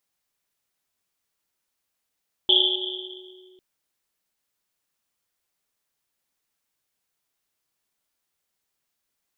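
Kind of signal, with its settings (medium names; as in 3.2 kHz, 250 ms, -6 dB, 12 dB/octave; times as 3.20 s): Risset drum, pitch 370 Hz, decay 2.64 s, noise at 3.3 kHz, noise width 420 Hz, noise 75%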